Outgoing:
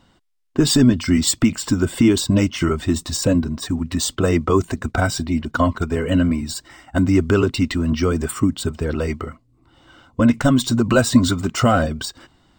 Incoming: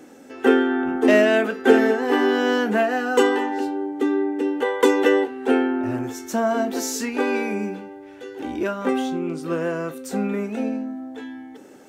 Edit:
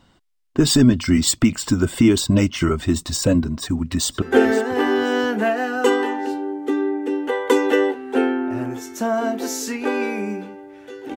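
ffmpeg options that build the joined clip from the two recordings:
-filter_complex "[0:a]apad=whole_dur=11.16,atrim=end=11.16,atrim=end=4.222[a];[1:a]atrim=start=1.548:end=8.49[b];[a][b]acrossfade=d=0.004:c1=hsin:c2=hsin,asplit=2[c][d];[d]afade=t=in:st=3.56:d=0.01,afade=t=out:st=4.22:d=0.01,aecho=0:1:520|1040|1560:0.158489|0.0475468|0.014264[e];[c][e]amix=inputs=2:normalize=0"

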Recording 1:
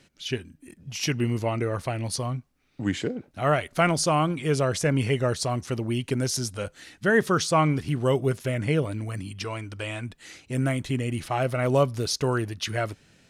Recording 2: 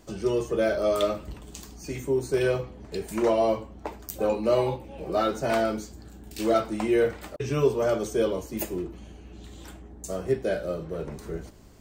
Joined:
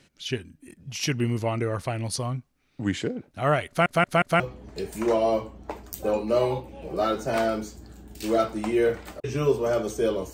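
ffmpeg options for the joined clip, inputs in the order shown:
-filter_complex "[0:a]apad=whole_dur=10.33,atrim=end=10.33,asplit=4[a][b][c][d];[a]atrim=end=3.862[e];[b]atrim=start=3.678:end=3.862[f];[c]atrim=start=3.678:end=3.862[g];[d]atrim=start=3.678:end=3.862[h];[1:a]atrim=start=2.558:end=8.49[i];[e][f]acrossfade=d=0.004:c1=hsin:c2=hsin[j];[j][g]acrossfade=d=0.004:c1=hsin:c2=hsin[k];[k][h]acrossfade=d=0.004:c1=hsin:c2=hsin[l];[l][i]acrossfade=d=0.004:c1=hsin:c2=hsin"

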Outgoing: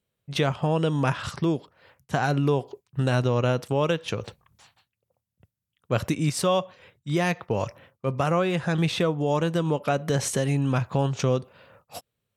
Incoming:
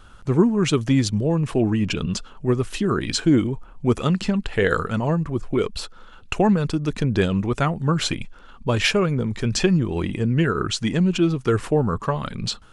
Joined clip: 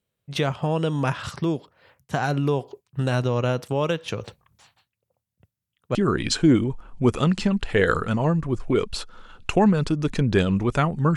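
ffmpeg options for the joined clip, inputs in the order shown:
-filter_complex "[0:a]apad=whole_dur=11.16,atrim=end=11.16,atrim=end=5.952[a];[1:a]atrim=start=2.778:end=7.99[b];[a][b]acrossfade=d=0.004:c1=hsin:c2=hsin"

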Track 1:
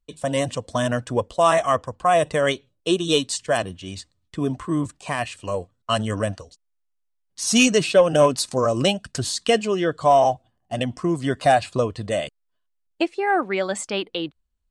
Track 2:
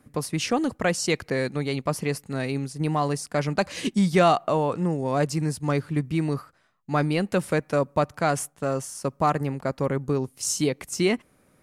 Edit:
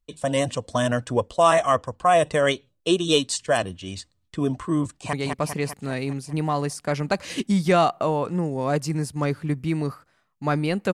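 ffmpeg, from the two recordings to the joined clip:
-filter_complex "[0:a]apad=whole_dur=10.93,atrim=end=10.93,atrim=end=5.132[a];[1:a]atrim=start=1.598:end=7.4[b];[a][b]acrossfade=d=0.004:c1=hsin:c2=hsin,asplit=2[c][d];[d]afade=t=in:st=4.84:d=0.01,afade=t=out:st=5.13:d=0.01,aecho=0:1:200|400|600|800|1000|1200|1400|1600|1800|2000:0.668344|0.434424|0.282375|0.183544|0.119304|0.0775473|0.0504058|0.0327637|0.0212964|0.0138427[e];[c][e]amix=inputs=2:normalize=0"

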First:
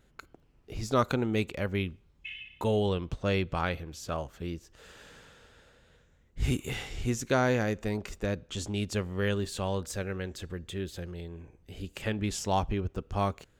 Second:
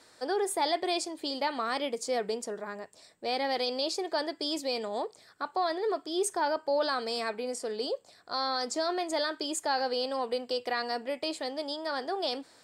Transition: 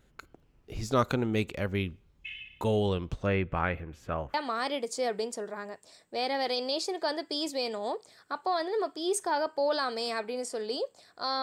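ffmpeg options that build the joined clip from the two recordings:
-filter_complex "[0:a]asettb=1/sr,asplit=3[a][b][c];[a]atrim=end=3.264[d];[b]atrim=start=3.26:end=4.34,asetpts=PTS-STARTPTS,afade=t=in:d=0.004:c=qsin,afade=t=out:st=1.076:d=0.004:c=qsin,highshelf=f=3.1k:t=q:w=1.5:g=-13[e];[c]atrim=start=4.336[f];[d][e]acrossfade=d=0.004:c1=hsin:c2=qsin[g];[g][f]acrossfade=d=0.004:c1=qsin:c2=hsin,apad=whole_dur=11.42,atrim=end=11.42,atrim=end=4.342[h];[1:a]atrim=start=1.438:end=8.52[i];[h][i]acrossfade=d=0.004:c1=hsin:c2=hsin"

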